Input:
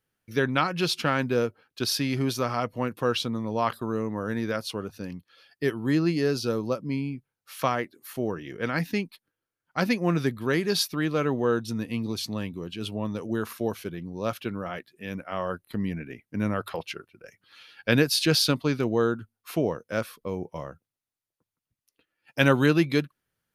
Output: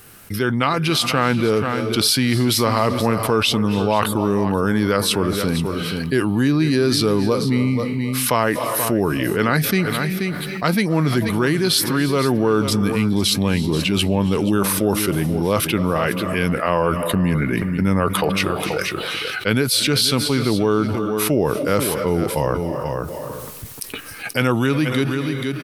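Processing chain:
high-shelf EQ 9,500 Hz +9.5 dB
automatic gain control gain up to 15.5 dB
single-tap delay 442 ms −15 dB
on a send at −17 dB: convolution reverb RT60 0.65 s, pre-delay 206 ms
on the sum: wrong playback speed 48 kHz file played as 44.1 kHz
envelope flattener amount 70%
level −6.5 dB

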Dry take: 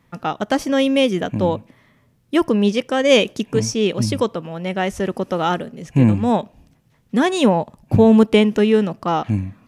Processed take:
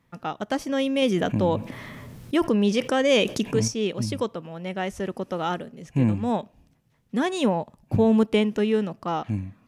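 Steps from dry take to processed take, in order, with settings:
0:01.02–0:03.68: envelope flattener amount 50%
level −7.5 dB

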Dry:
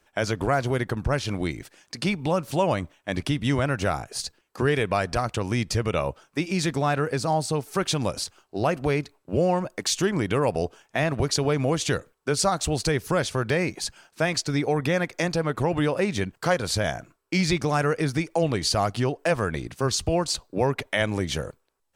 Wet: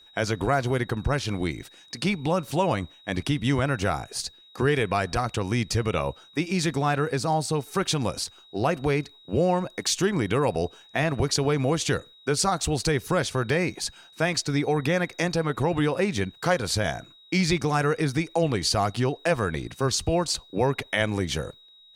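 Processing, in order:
steady tone 3,800 Hz −51 dBFS
notch filter 600 Hz, Q 12

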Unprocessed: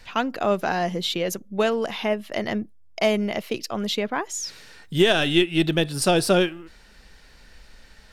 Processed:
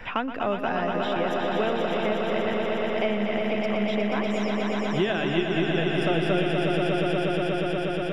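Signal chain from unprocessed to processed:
Savitzky-Golay smoothing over 25 samples
on a send: echo that builds up and dies away 120 ms, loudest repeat 5, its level −6 dB
on the sum: multiband upward and downward compressor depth 70%
level −6.5 dB

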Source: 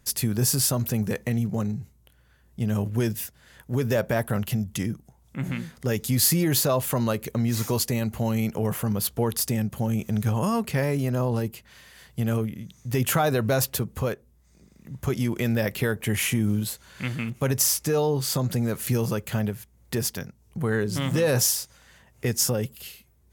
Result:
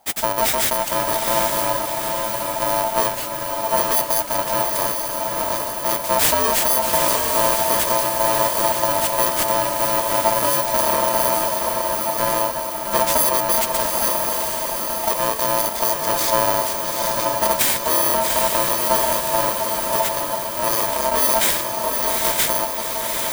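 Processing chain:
samples in bit-reversed order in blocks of 64 samples
feedback delay with all-pass diffusion 819 ms, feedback 61%, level −3 dB
ring modulation 780 Hz
level +6.5 dB

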